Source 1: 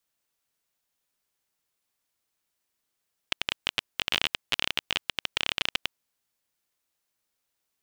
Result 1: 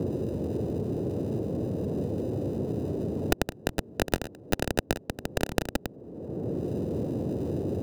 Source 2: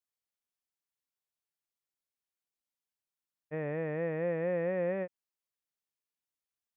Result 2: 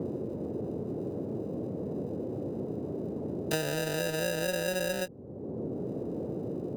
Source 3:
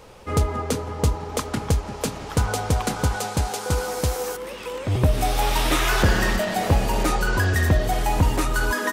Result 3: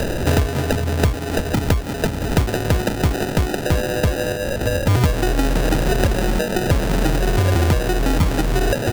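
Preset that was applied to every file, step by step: sample-and-hold 40×; band noise 83–480 Hz -53 dBFS; three bands compressed up and down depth 100%; trim +3 dB

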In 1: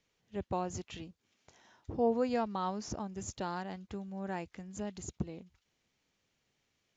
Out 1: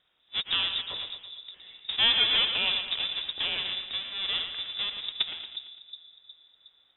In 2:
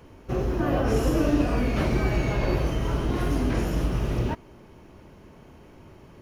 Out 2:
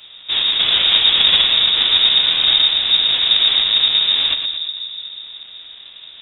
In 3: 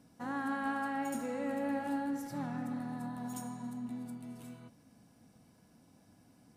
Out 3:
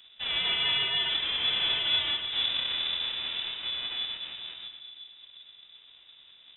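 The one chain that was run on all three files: square wave that keeps the level; two-band feedback delay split 300 Hz, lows 363 ms, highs 114 ms, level -8 dB; frequency inversion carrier 3.7 kHz; trim +2.5 dB

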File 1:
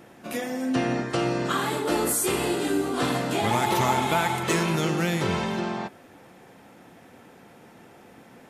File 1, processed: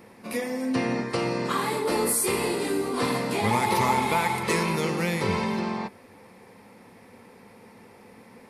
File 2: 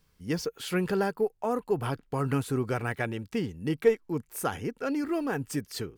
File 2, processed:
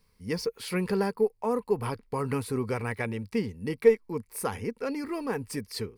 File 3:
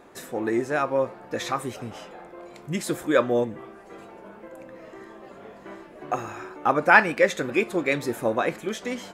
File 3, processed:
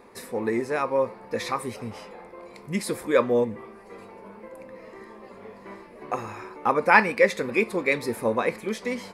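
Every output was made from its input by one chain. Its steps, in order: rippled EQ curve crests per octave 0.9, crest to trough 8 dB; trim -1 dB

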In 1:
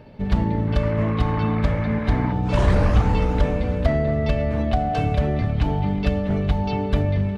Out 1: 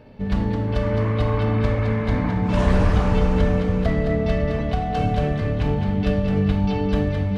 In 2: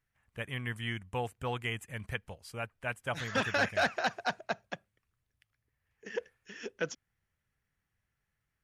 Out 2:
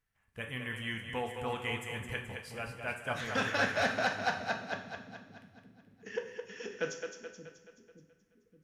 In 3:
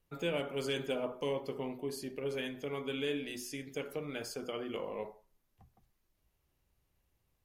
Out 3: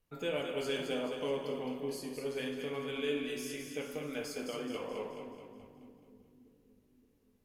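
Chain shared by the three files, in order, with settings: two-band feedback delay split 310 Hz, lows 572 ms, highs 214 ms, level -6.5 dB; two-slope reverb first 0.63 s, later 1.8 s, DRR 3 dB; trim -2.5 dB

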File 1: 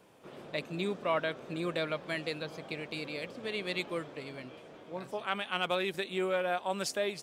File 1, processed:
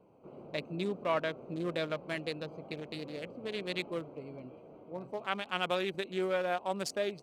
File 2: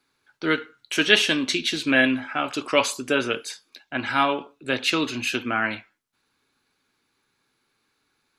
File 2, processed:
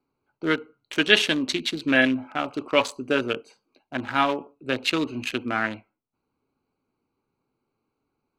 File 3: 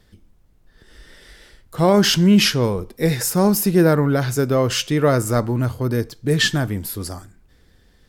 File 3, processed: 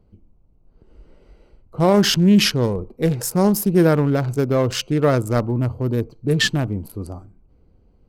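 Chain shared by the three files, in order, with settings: local Wiener filter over 25 samples

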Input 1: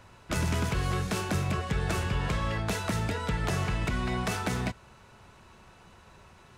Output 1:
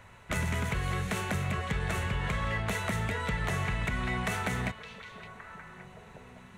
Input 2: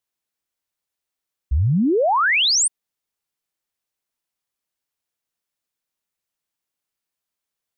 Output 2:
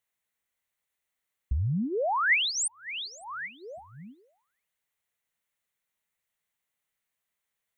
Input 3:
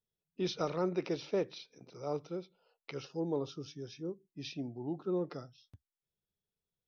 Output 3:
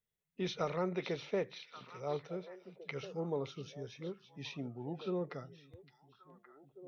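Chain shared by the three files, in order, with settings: compression 5:1, threshold -27 dBFS; graphic EQ with 31 bands 315 Hz -9 dB, 2 kHz +8 dB, 5 kHz -10 dB; repeats whose band climbs or falls 565 ms, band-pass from 3.5 kHz, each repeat -1.4 oct, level -7.5 dB

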